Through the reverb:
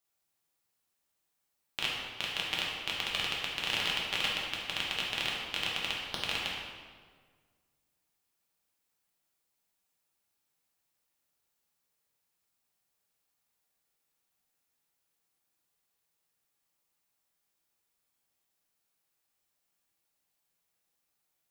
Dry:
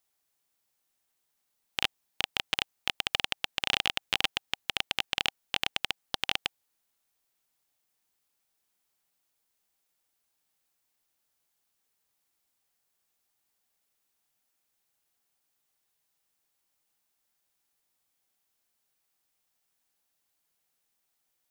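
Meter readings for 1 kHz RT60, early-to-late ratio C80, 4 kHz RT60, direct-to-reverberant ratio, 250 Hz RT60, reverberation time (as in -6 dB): 1.6 s, 2.0 dB, 1.2 s, -4.5 dB, 1.9 s, 1.7 s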